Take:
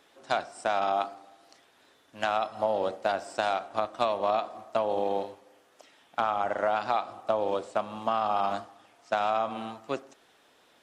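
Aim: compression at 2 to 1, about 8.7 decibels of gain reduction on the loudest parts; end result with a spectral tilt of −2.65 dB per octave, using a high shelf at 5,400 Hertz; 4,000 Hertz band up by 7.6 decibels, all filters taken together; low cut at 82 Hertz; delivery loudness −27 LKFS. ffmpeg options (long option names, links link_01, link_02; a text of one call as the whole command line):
ffmpeg -i in.wav -af "highpass=82,equalizer=frequency=4000:width_type=o:gain=6.5,highshelf=frequency=5400:gain=7.5,acompressor=threshold=-38dB:ratio=2,volume=10.5dB" out.wav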